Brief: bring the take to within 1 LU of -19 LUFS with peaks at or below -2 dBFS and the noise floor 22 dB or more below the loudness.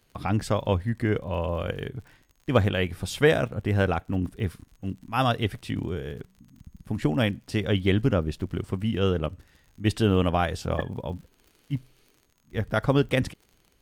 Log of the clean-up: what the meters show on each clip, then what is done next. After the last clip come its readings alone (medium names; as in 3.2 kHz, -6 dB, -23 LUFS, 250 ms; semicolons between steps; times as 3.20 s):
tick rate 52 per s; loudness -27.0 LUFS; peak level -5.0 dBFS; loudness target -19.0 LUFS
-> de-click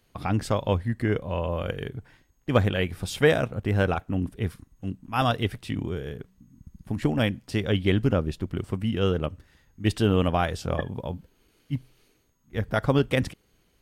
tick rate 0.072 per s; loudness -27.0 LUFS; peak level -5.0 dBFS; loudness target -19.0 LUFS
-> trim +8 dB; peak limiter -2 dBFS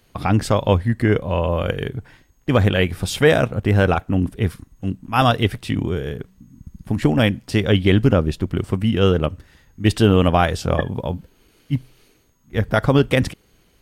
loudness -19.5 LUFS; peak level -2.0 dBFS; noise floor -58 dBFS